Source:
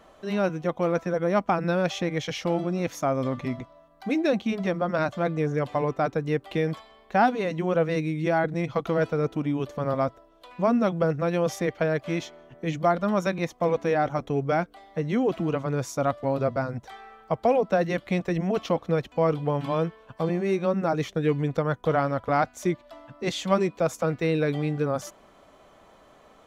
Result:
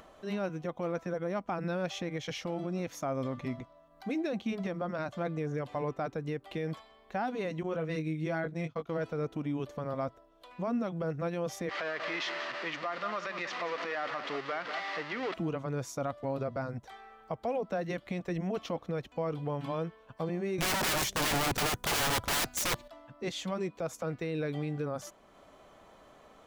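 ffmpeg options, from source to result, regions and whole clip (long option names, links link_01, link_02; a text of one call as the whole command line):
ffmpeg -i in.wav -filter_complex "[0:a]asettb=1/sr,asplit=3[link_01][link_02][link_03];[link_01]atrim=end=7.634[link_04];[link_02]atrim=start=7.63:end=8.9,asetpts=PTS-STARTPTS,afade=type=in:duration=0.004:curve=qsin,afade=type=out:start_time=1.266:duration=0.004:curve=qsin,bandreject=frequency=780:width=12,agate=range=-33dB:threshold=-27dB:ratio=3:release=100:detection=peak,asplit=2[link_05][link_06];[link_06]adelay=19,volume=-6.5dB[link_07];[link_05][link_07]amix=inputs=2:normalize=0,atrim=end_sample=56007[link_08];[link_03]atrim=start=8.896[link_09];[link_04][link_08]acrossfade=duration=0.004:curve1=hsin:curve2=qsin[link_10];[link_10][link_09]acrossfade=duration=0.004:curve1=qsin:curve2=hsin,asettb=1/sr,asplit=3[link_11][link_12][link_13];[link_11]atrim=end=11.694[link_14];[link_12]atrim=start=11.69:end=15.34,asetpts=PTS-STARTPTS,afade=type=in:duration=0.004:curve=qsin,afade=type=out:start_time=3.646:duration=0.004:curve=qsin,aeval=exprs='val(0)+0.5*0.0473*sgn(val(0))':channel_layout=same,highpass=470,equalizer=frequency=480:width_type=q:width=4:gain=-4,equalizer=frequency=780:width_type=q:width=4:gain=-3,equalizer=frequency=1200:width_type=q:width=4:gain=7,equalizer=frequency=1900:width_type=q:width=4:gain=9,equalizer=frequency=2800:width_type=q:width=4:gain=4,equalizer=frequency=4600:width_type=q:width=4:gain=3,lowpass=frequency=4900:width=0.5412,lowpass=frequency=4900:width=1.3066,aecho=1:1:185:0.237,atrim=end_sample=160965[link_15];[link_13]atrim=start=15.336[link_16];[link_14][link_15]acrossfade=duration=0.004:curve1=hsin:curve2=qsin[link_17];[link_17][link_16]acrossfade=duration=0.004:curve1=qsin:curve2=hsin,asettb=1/sr,asplit=3[link_18][link_19][link_20];[link_18]atrim=end=20.584[link_21];[link_19]atrim=start=20.58:end=22.88,asetpts=PTS-STARTPTS,afade=type=in:duration=0.004:curve=qsin,afade=type=out:start_time=2.296:duration=0.004:curve=qsin,bass=frequency=250:gain=7,treble=frequency=4000:gain=12,acontrast=64,aeval=exprs='(mod(8.41*val(0)+1,2)-1)/8.41':channel_layout=same[link_22];[link_20]atrim=start=22.876[link_23];[link_21][link_22]acrossfade=duration=0.004:curve1=hsin:curve2=qsin[link_24];[link_24][link_23]acrossfade=duration=0.004:curve1=qsin:curve2=hsin,alimiter=limit=-19dB:level=0:latency=1:release=90,acompressor=mode=upward:threshold=-44dB:ratio=2.5,volume=-6dB" out.wav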